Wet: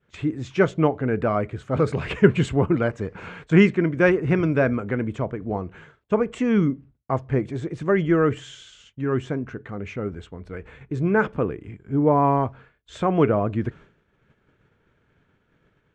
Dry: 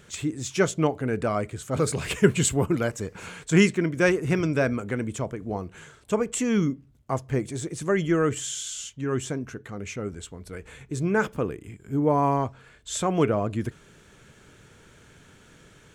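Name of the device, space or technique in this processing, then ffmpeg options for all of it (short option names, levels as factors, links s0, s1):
hearing-loss simulation: -af "lowpass=2300,agate=range=0.0224:threshold=0.00708:ratio=3:detection=peak,volume=1.5"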